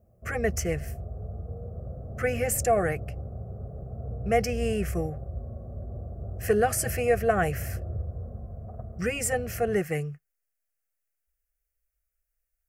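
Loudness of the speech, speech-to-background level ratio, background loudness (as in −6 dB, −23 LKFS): −28.0 LKFS, 9.5 dB, −37.5 LKFS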